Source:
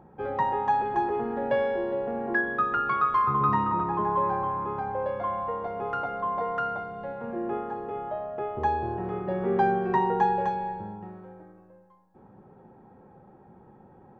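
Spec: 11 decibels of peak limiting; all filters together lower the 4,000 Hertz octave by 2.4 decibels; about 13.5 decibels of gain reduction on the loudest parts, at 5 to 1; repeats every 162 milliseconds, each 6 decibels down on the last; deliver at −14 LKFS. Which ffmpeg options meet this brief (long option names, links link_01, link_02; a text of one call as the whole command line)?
ffmpeg -i in.wav -af "equalizer=frequency=4000:width_type=o:gain=-3.5,acompressor=threshold=-35dB:ratio=5,alimiter=level_in=11.5dB:limit=-24dB:level=0:latency=1,volume=-11.5dB,aecho=1:1:162|324|486|648|810|972:0.501|0.251|0.125|0.0626|0.0313|0.0157,volume=28dB" out.wav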